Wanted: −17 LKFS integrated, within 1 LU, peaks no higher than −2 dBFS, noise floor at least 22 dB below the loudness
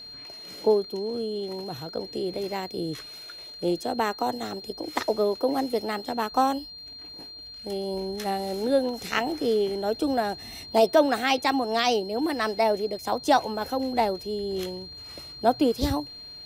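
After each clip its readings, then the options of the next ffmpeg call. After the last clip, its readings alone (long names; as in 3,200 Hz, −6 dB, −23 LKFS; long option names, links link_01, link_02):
interfering tone 4,200 Hz; level of the tone −40 dBFS; integrated loudness −26.5 LKFS; sample peak −8.0 dBFS; target loudness −17.0 LKFS
→ -af "bandreject=frequency=4200:width=30"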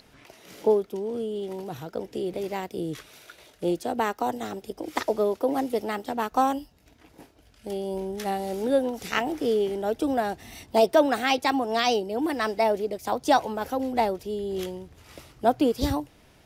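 interfering tone none found; integrated loudness −27.0 LKFS; sample peak −8.0 dBFS; target loudness −17.0 LKFS
→ -af "volume=10dB,alimiter=limit=-2dB:level=0:latency=1"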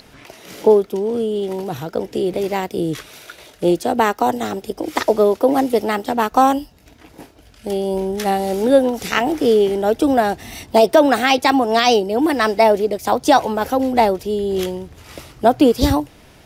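integrated loudness −17.5 LKFS; sample peak −2.0 dBFS; background noise floor −47 dBFS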